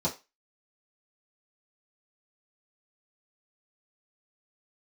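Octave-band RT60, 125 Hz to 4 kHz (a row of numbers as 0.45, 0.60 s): 0.15, 0.20, 0.25, 0.25, 0.25, 0.25 s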